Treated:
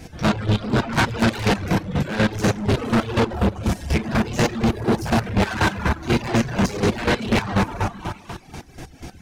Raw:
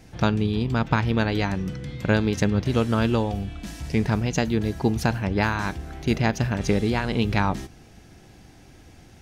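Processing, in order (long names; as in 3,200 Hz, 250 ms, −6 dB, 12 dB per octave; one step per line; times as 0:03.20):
in parallel at +1.5 dB: output level in coarse steps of 15 dB
on the sum: dense smooth reverb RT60 1.6 s, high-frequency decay 0.75×, DRR −6.5 dB
soft clipping −19.5 dBFS, distortion −6 dB
0:00.92–0:01.83: high-shelf EQ 5,600 Hz +7.5 dB
on a send: echo through a band-pass that steps 391 ms, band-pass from 1,100 Hz, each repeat 1.4 octaves, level −10.5 dB
on the sum: square-wave tremolo 4.1 Hz, depth 60%, duty 30%
reverb reduction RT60 0.64 s
level +5.5 dB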